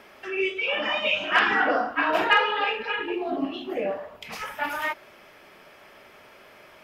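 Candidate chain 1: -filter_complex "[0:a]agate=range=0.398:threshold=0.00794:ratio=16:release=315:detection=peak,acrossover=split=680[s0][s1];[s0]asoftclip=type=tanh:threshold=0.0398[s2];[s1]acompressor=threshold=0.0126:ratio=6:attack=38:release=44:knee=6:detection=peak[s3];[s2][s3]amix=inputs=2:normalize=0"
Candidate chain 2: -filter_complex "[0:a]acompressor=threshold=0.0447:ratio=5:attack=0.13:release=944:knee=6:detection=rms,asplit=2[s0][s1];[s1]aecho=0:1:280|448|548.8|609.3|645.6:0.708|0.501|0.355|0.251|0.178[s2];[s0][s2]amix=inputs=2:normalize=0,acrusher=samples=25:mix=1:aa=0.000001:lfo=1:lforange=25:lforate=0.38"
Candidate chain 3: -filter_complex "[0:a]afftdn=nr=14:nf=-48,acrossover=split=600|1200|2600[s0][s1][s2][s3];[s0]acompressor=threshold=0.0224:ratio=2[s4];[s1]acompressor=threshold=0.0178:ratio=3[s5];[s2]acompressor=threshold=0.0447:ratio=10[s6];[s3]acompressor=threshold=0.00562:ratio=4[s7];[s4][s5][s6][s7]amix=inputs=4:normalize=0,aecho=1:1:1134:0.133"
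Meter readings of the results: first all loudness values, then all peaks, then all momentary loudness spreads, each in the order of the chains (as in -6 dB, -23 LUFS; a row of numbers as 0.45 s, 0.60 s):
-31.5 LUFS, -33.5 LUFS, -29.0 LUFS; -19.0 dBFS, -19.0 dBFS, -13.0 dBFS; 7 LU, 17 LU, 17 LU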